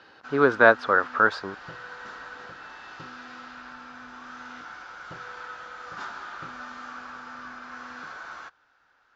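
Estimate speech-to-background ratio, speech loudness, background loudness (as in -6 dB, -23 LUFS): 20.0 dB, -20.5 LUFS, -40.5 LUFS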